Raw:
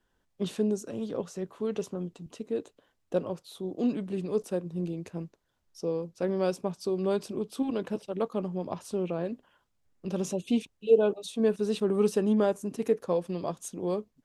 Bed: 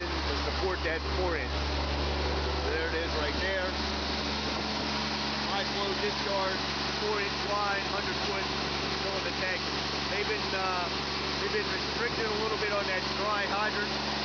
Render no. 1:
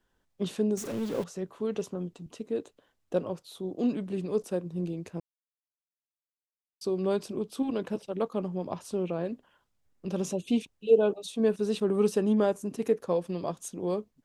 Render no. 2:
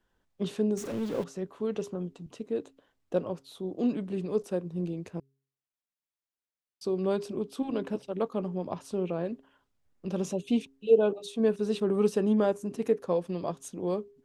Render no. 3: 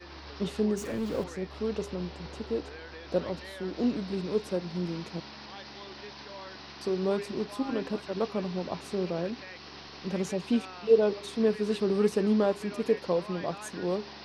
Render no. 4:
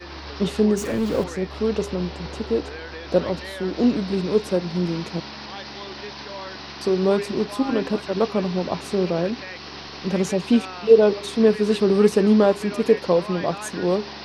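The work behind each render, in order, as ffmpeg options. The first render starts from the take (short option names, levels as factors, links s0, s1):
-filter_complex "[0:a]asettb=1/sr,asplit=3[s0][s1][s2];[s0]atrim=end=0.774[s3];[s1]atrim=start=0.77:end=1.24,asetpts=PTS-STARTPTS,afade=t=in:d=0.004:c=qsin,afade=t=out:st=0.466:d=0.004:c=qsin,aeval=exprs='val(0)+0.5*0.0158*sgn(val(0))':c=same[s4];[s2]atrim=start=1.236[s5];[s3][s4]acrossfade=d=0.004:c1=hsin:c2=qsin[s6];[s6][s5]acrossfade=d=0.004:c1=qsin:c2=hsin,asplit=3[s7][s8][s9];[s7]atrim=end=5.2,asetpts=PTS-STARTPTS,afade=t=out:st=5.196:d=0.004:c=hsin[s10];[s8]atrim=start=5.2:end=6.81,asetpts=PTS-STARTPTS,volume=0[s11];[s9]atrim=start=6.81,asetpts=PTS-STARTPTS,afade=t=in:d=0.004:c=hsin[s12];[s10][s11][s12]concat=n=3:v=0:a=1"
-af "highshelf=f=5600:g=-5.5,bandreject=f=135.3:t=h:w=4,bandreject=f=270.6:t=h:w=4,bandreject=f=405.9:t=h:w=4"
-filter_complex "[1:a]volume=0.2[s0];[0:a][s0]amix=inputs=2:normalize=0"
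-af "volume=2.82,alimiter=limit=0.708:level=0:latency=1"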